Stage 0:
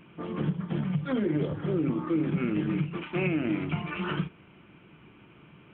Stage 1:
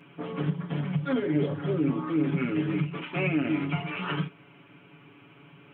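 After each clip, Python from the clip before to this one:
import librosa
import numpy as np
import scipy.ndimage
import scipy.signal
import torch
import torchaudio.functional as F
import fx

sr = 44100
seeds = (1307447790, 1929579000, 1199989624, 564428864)

y = fx.highpass(x, sr, hz=180.0, slope=6)
y = y + 0.93 * np.pad(y, (int(7.1 * sr / 1000.0), 0))[:len(y)]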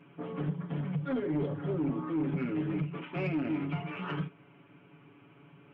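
y = fx.high_shelf(x, sr, hz=2500.0, db=-10.5)
y = 10.0 ** (-21.0 / 20.0) * np.tanh(y / 10.0 ** (-21.0 / 20.0))
y = F.gain(torch.from_numpy(y), -3.0).numpy()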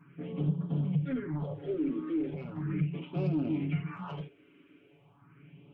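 y = fx.peak_eq(x, sr, hz=150.0, db=3.5, octaves=0.77)
y = fx.phaser_stages(y, sr, stages=4, low_hz=130.0, high_hz=2000.0, hz=0.38, feedback_pct=25)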